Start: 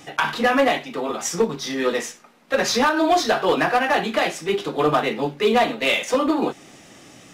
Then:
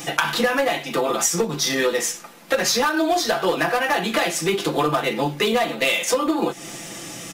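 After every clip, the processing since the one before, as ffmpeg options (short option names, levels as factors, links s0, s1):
-af "highshelf=f=6800:g=12,aecho=1:1:5.9:0.52,acompressor=threshold=0.0501:ratio=6,volume=2.51"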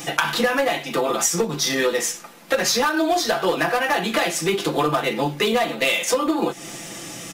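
-af anull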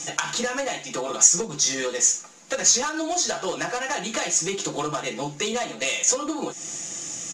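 -af "lowpass=f=6800:t=q:w=9.1,volume=0.422"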